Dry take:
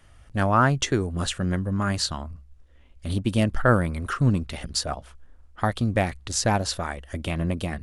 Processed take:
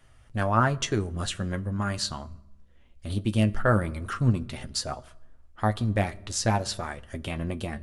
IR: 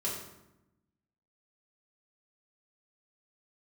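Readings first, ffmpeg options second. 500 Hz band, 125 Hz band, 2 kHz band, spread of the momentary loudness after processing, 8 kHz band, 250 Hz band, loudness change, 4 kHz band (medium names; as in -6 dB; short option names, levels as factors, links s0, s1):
-3.0 dB, -2.0 dB, -3.5 dB, 12 LU, -3.5 dB, -3.5 dB, -3.0 dB, -3.5 dB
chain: -filter_complex "[0:a]flanger=delay=7.6:depth=2.3:regen=49:speed=0.42:shape=triangular,asplit=2[s0][s1];[1:a]atrim=start_sample=2205[s2];[s1][s2]afir=irnorm=-1:irlink=0,volume=0.0891[s3];[s0][s3]amix=inputs=2:normalize=0"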